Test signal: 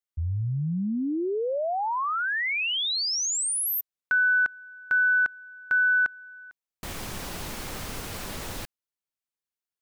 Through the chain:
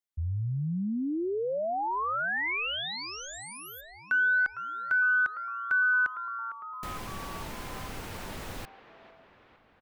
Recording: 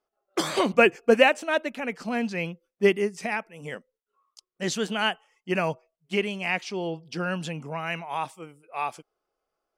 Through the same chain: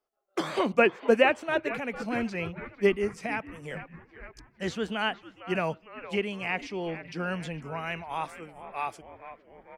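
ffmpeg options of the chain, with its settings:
-filter_complex "[0:a]acrossover=split=390|3200[a][b][c];[b]asplit=8[d][e][f][g][h][i][j][k];[e]adelay=455,afreqshift=-120,volume=-12dB[l];[f]adelay=910,afreqshift=-240,volume=-16dB[m];[g]adelay=1365,afreqshift=-360,volume=-20dB[n];[h]adelay=1820,afreqshift=-480,volume=-24dB[o];[i]adelay=2275,afreqshift=-600,volume=-28.1dB[p];[j]adelay=2730,afreqshift=-720,volume=-32.1dB[q];[k]adelay=3185,afreqshift=-840,volume=-36.1dB[r];[d][l][m][n][o][p][q][r]amix=inputs=8:normalize=0[s];[c]acompressor=threshold=-44dB:ratio=6:attack=13:release=250:detection=rms[t];[a][s][t]amix=inputs=3:normalize=0,volume=-3dB"

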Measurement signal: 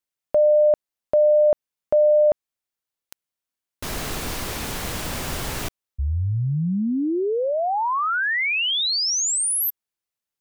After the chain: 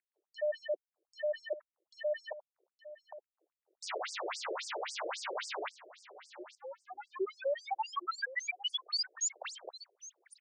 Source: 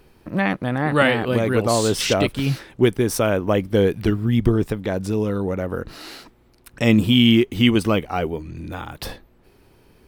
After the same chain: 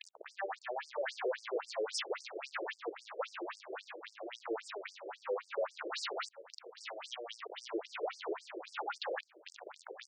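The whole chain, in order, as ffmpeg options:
-filter_complex "[0:a]adynamicequalizer=threshold=0.0112:dfrequency=150:dqfactor=3.9:tfrequency=150:tqfactor=3.9:attack=5:release=100:ratio=0.45:range=3.5:mode=boostabove:tftype=bell,acrossover=split=140[a][b];[b]acrusher=bits=7:mix=0:aa=0.000001[c];[a][c]amix=inputs=2:normalize=0,acompressor=mode=upward:threshold=-29dB:ratio=2.5:attack=0.15:release=41:knee=2.83:detection=peak,asplit=2[d][e];[e]highpass=f=720:p=1,volume=33dB,asoftclip=type=tanh:threshold=-1.5dB[f];[d][f]amix=inputs=2:normalize=0,lowpass=f=1.2k:p=1,volume=-6dB,aresample=22050,aresample=44100,lowshelf=f=81:g=6,areverse,acompressor=threshold=-21dB:ratio=16:attack=11:release=281:knee=1:detection=rms,areverse,asoftclip=type=tanh:threshold=-27.5dB,aecho=1:1:866:0.15,afftfilt=real='re*between(b*sr/1024,440*pow(6700/440,0.5+0.5*sin(2*PI*3.7*pts/sr))/1.41,440*pow(6700/440,0.5+0.5*sin(2*PI*3.7*pts/sr))*1.41)':imag='im*between(b*sr/1024,440*pow(6700/440,0.5+0.5*sin(2*PI*3.7*pts/sr))/1.41,440*pow(6700/440,0.5+0.5*sin(2*PI*3.7*pts/sr))*1.41)':win_size=1024:overlap=0.75,volume=-1dB"

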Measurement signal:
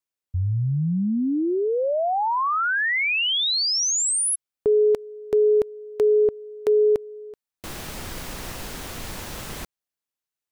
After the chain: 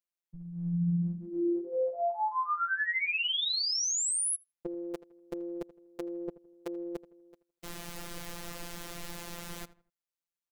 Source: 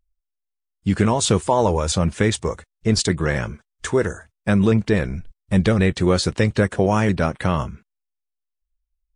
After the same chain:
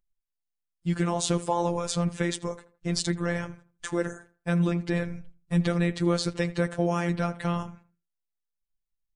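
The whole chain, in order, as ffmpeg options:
-filter_complex "[0:a]asplit=2[a][b];[b]adelay=81,lowpass=f=2.1k:p=1,volume=-16.5dB,asplit=2[c][d];[d]adelay=81,lowpass=f=2.1k:p=1,volume=0.33,asplit=2[e][f];[f]adelay=81,lowpass=f=2.1k:p=1,volume=0.33[g];[a][c][e][g]amix=inputs=4:normalize=0,afftfilt=real='hypot(re,im)*cos(PI*b)':imag='0':win_size=1024:overlap=0.75,volume=-4.5dB"

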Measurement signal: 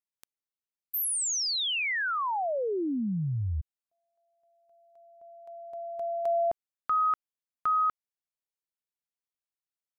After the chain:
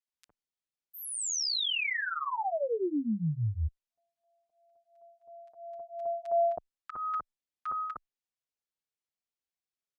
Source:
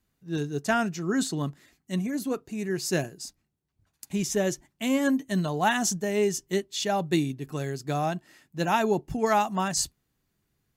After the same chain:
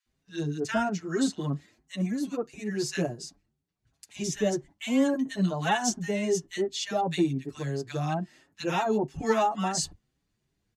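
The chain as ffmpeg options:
-filter_complex "[0:a]lowpass=7.6k,acrossover=split=1300[a][b];[a]adelay=60[c];[c][b]amix=inputs=2:normalize=0,asplit=2[d][e];[e]adelay=6.3,afreqshift=2.9[f];[d][f]amix=inputs=2:normalize=1,volume=2dB"

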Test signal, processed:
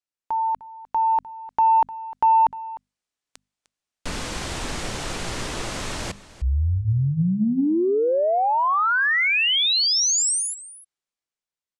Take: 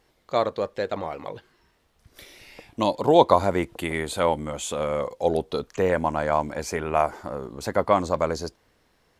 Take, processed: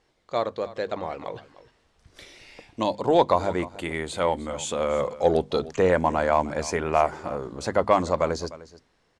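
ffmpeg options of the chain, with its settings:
-filter_complex "[0:a]lowpass=f=8.9k:w=0.5412,lowpass=f=8.9k:w=1.3066,bandreject=f=50:t=h:w=6,bandreject=f=100:t=h:w=6,bandreject=f=150:t=h:w=6,bandreject=f=200:t=h:w=6,bandreject=f=250:t=h:w=6,dynaudnorm=f=350:g=7:m=8dB,asoftclip=type=tanh:threshold=-2dB,asplit=2[a][b];[b]aecho=0:1:303:0.133[c];[a][c]amix=inputs=2:normalize=0,volume=-3dB"

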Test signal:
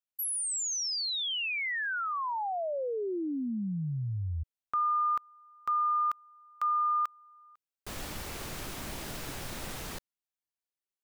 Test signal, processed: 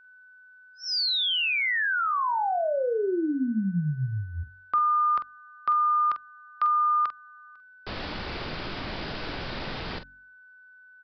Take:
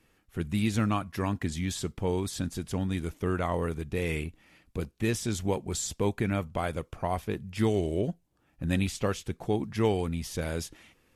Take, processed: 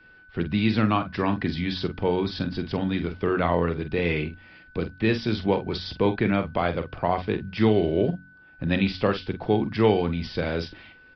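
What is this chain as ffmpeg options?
-filter_complex "[0:a]aresample=11025,aresample=44100,acrossover=split=120|640|2300[a][b][c][d];[a]acompressor=threshold=-45dB:ratio=6:attack=15:release=48:knee=1[e];[e][b][c][d]amix=inputs=4:normalize=0,aeval=exprs='val(0)+0.00112*sin(2*PI*1500*n/s)':c=same,asplit=2[f][g];[g]adelay=46,volume=-10dB[h];[f][h]amix=inputs=2:normalize=0,bandreject=f=46.02:t=h:w=4,bandreject=f=92.04:t=h:w=4,bandreject=f=138.06:t=h:w=4,bandreject=f=184.08:t=h:w=4,bandreject=f=230.1:t=h:w=4,bandreject=f=276.12:t=h:w=4,volume=6.5dB"

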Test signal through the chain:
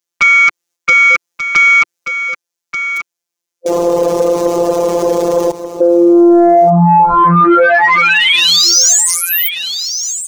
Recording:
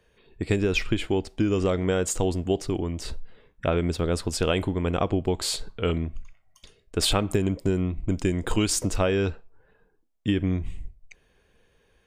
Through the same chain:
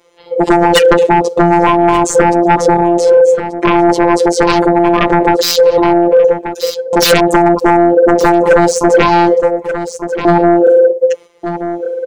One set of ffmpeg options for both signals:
-filter_complex "[0:a]agate=range=-7dB:threshold=-59dB:ratio=16:detection=peak,afwtdn=0.0282,aeval=exprs='val(0)*sin(2*PI*490*n/s)':c=same,acrossover=split=7800[a][b];[b]acompressor=threshold=-46dB:ratio=4:attack=1:release=60[c];[a][c]amix=inputs=2:normalize=0,equalizer=f=160:t=o:w=0.67:g=-5,equalizer=f=400:t=o:w=0.67:g=7,equalizer=f=6.3k:t=o:w=0.67:g=8,asplit=2[d][e];[e]acompressor=threshold=-35dB:ratio=6,volume=-0.5dB[f];[d][f]amix=inputs=2:normalize=0,afftfilt=real='hypot(re,im)*cos(PI*b)':imag='0':win_size=1024:overlap=0.75,highpass=f=89:p=1,aeval=exprs='0.376*sin(PI/2*3.98*val(0)/0.376)':c=same,asplit=2[g][h];[h]aecho=0:1:1183:0.0891[i];[g][i]amix=inputs=2:normalize=0,alimiter=level_in=18.5dB:limit=-1dB:release=50:level=0:latency=1,volume=-1dB"

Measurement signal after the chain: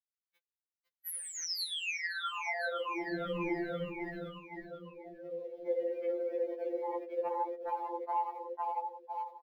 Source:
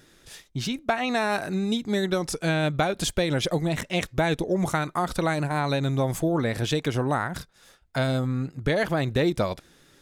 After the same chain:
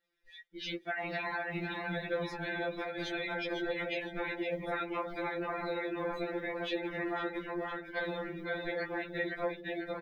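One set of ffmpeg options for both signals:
-filter_complex "[0:a]bandreject=f=500:w=12,aecho=1:1:3.8:0.69,asplit=2[a][b];[b]aecho=0:1:504|1008|1512|2016|2520|3024:0.631|0.309|0.151|0.0742|0.0364|0.0178[c];[a][c]amix=inputs=2:normalize=0,afftfilt=real='hypot(re,im)*cos(2*PI*random(0))':imag='hypot(re,im)*sin(2*PI*random(1))':win_size=512:overlap=0.75,alimiter=limit=-20dB:level=0:latency=1:release=19,flanger=delay=2.1:depth=1.5:regen=-76:speed=1.3:shape=triangular,acrusher=bits=3:mode=log:mix=0:aa=0.000001,equalizer=f=125:t=o:w=1:g=-6,equalizer=f=500:t=o:w=1:g=7,equalizer=f=2k:t=o:w=1:g=10,equalizer=f=4k:t=o:w=1:g=5,equalizer=f=8k:t=o:w=1:g=-10,acompressor=threshold=-29dB:ratio=10,afftdn=nr=20:nf=-43,adynamicequalizer=threshold=0.00282:dfrequency=3700:dqfactor=1.1:tfrequency=3700:tqfactor=1.1:attack=5:release=100:ratio=0.375:range=1.5:mode=cutabove:tftype=bell,afftfilt=real='re*2.83*eq(mod(b,8),0)':imag='im*2.83*eq(mod(b,8),0)':win_size=2048:overlap=0.75"

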